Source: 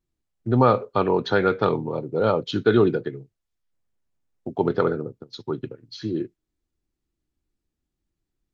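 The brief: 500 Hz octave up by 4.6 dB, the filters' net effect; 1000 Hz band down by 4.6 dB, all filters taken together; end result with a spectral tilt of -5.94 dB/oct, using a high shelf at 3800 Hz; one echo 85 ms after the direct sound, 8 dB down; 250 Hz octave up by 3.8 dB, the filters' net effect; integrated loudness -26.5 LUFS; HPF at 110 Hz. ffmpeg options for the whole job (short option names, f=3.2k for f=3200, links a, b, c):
-af "highpass=110,equalizer=f=250:t=o:g=3.5,equalizer=f=500:t=o:g=6,equalizer=f=1k:t=o:g=-7.5,highshelf=f=3.8k:g=-6.5,aecho=1:1:85:0.398,volume=-7dB"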